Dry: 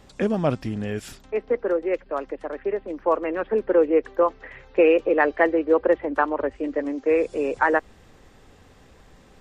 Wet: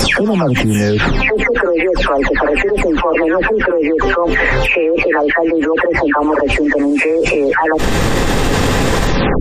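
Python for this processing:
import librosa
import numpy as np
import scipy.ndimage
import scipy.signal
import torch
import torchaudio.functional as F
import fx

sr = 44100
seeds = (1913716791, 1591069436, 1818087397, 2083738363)

y = fx.spec_delay(x, sr, highs='early', ms=334)
y = fx.env_flatten(y, sr, amount_pct=100)
y = F.gain(torch.from_numpy(y), 1.0).numpy()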